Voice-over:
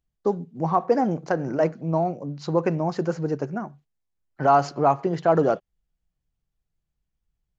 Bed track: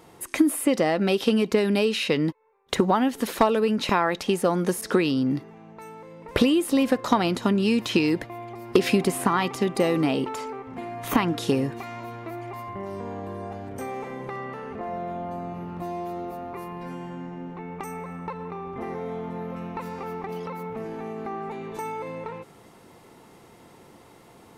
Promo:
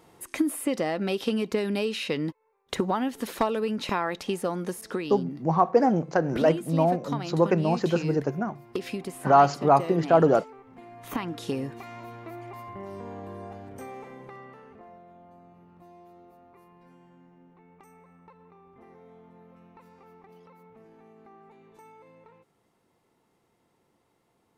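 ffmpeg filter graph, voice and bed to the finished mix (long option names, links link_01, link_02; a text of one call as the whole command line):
ffmpeg -i stem1.wav -i stem2.wav -filter_complex "[0:a]adelay=4850,volume=0.5dB[link_01];[1:a]volume=2dB,afade=type=out:start_time=4.28:duration=0.98:silence=0.446684,afade=type=in:start_time=10.82:duration=1.17:silence=0.421697,afade=type=out:start_time=13.39:duration=1.64:silence=0.188365[link_02];[link_01][link_02]amix=inputs=2:normalize=0" out.wav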